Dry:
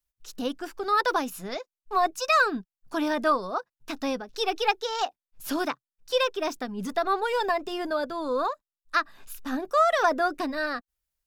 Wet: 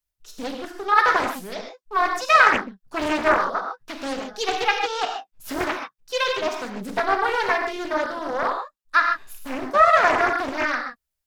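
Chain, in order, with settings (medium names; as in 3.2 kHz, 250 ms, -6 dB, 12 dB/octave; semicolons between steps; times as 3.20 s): dynamic bell 1.7 kHz, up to +8 dB, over -39 dBFS, Q 1; gated-style reverb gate 170 ms flat, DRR 2 dB; loudspeaker Doppler distortion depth 0.73 ms; trim -1 dB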